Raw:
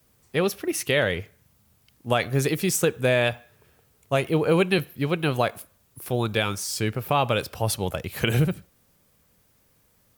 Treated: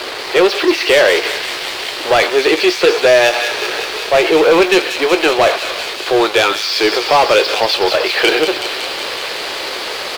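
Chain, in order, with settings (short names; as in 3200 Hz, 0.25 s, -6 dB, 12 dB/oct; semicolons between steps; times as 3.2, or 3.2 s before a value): zero-crossing step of -25.5 dBFS; Chebyshev band-pass 350–4600 Hz, order 4; sample leveller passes 3; reverse; upward compressor, threshold -23 dBFS; reverse; doubler 19 ms -11 dB; on a send: thin delay 0.186 s, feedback 81%, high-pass 3300 Hz, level -4 dB; on the sum: gain +3.5 dB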